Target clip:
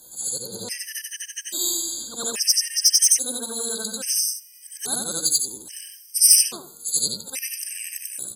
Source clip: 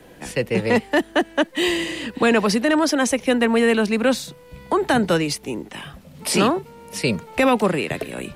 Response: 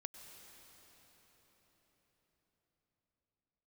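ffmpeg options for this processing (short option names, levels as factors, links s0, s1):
-filter_complex "[0:a]afftfilt=real='re':imag='-im':win_size=8192:overlap=0.75,areverse,acompressor=mode=upward:threshold=0.0178:ratio=2.5,areverse,highshelf=f=3800:t=q:w=1.5:g=13.5,asoftclip=type=hard:threshold=0.335,crystalizer=i=7:c=0,asplit=2[s0][s1];[s1]adelay=78,lowpass=f=3100:p=1,volume=0.158,asplit=2[s2][s3];[s3]adelay=78,lowpass=f=3100:p=1,volume=0.44,asplit=2[s4][s5];[s5]adelay=78,lowpass=f=3100:p=1,volume=0.44,asplit=2[s6][s7];[s7]adelay=78,lowpass=f=3100:p=1,volume=0.44[s8];[s2][s4][s6][s8]amix=inputs=4:normalize=0[s9];[s0][s9]amix=inputs=2:normalize=0,afftfilt=real='re*gt(sin(2*PI*0.6*pts/sr)*(1-2*mod(floor(b*sr/1024/1600),2)),0)':imag='im*gt(sin(2*PI*0.6*pts/sr)*(1-2*mod(floor(b*sr/1024/1600),2)),0)':win_size=1024:overlap=0.75,volume=0.224"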